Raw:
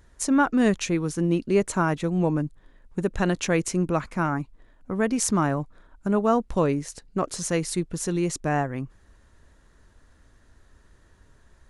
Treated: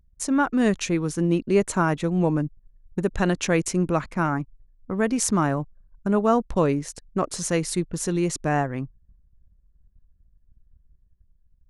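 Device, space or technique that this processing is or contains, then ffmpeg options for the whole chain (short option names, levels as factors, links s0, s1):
voice memo with heavy noise removal: -af "anlmdn=0.0398,dynaudnorm=f=150:g=9:m=1.41,volume=0.841"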